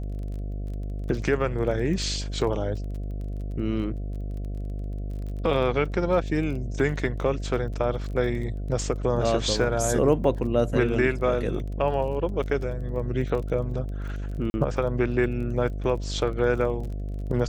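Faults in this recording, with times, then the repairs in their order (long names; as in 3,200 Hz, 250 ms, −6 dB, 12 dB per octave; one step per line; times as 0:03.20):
mains buzz 50 Hz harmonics 14 −31 dBFS
surface crackle 21 per second −35 dBFS
0:14.50–0:14.54: drop-out 41 ms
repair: click removal
hum removal 50 Hz, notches 14
repair the gap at 0:14.50, 41 ms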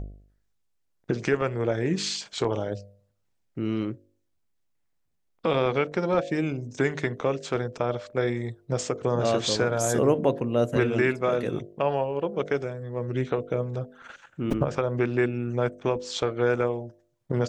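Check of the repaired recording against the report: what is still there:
none of them is left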